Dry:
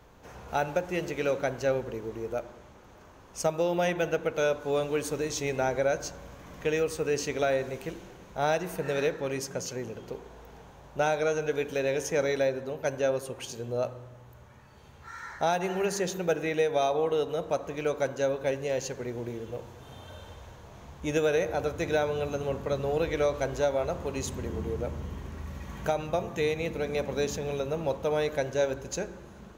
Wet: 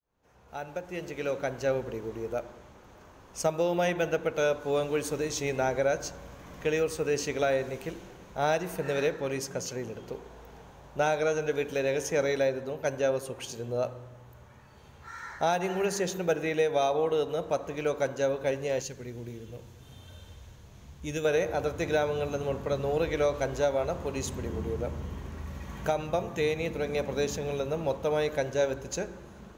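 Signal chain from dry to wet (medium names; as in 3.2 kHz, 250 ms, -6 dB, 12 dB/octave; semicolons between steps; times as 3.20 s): fade-in on the opening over 1.88 s; 18.82–21.25 s: peaking EQ 790 Hz -11 dB 2.6 oct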